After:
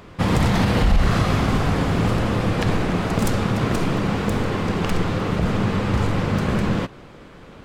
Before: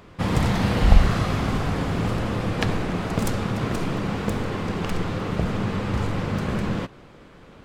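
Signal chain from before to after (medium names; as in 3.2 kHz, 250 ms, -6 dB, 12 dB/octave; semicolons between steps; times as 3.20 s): loudness maximiser +12 dB; trim -7.5 dB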